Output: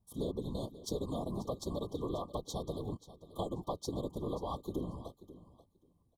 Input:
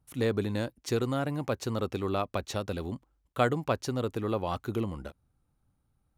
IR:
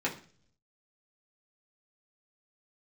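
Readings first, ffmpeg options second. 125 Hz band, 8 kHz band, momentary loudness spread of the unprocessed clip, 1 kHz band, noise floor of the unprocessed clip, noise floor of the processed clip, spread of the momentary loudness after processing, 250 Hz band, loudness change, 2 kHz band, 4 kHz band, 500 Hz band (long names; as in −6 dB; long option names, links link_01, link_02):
−8.5 dB, −5.0 dB, 8 LU, −8.5 dB, −75 dBFS, −73 dBFS, 10 LU, −7.0 dB, −8.0 dB, below −40 dB, −7.0 dB, −8.0 dB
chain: -filter_complex "[0:a]afftfilt=real='hypot(re,im)*cos(2*PI*random(0))':imag='hypot(re,im)*sin(2*PI*random(1))':win_size=512:overlap=0.75,acompressor=threshold=-35dB:ratio=5,afftfilt=real='re*(1-between(b*sr/4096,1200,3100))':imag='im*(1-between(b*sr/4096,1200,3100))':win_size=4096:overlap=0.75,asplit=2[link_01][link_02];[link_02]aecho=0:1:535|1070:0.158|0.0254[link_03];[link_01][link_03]amix=inputs=2:normalize=0,volume=2dB"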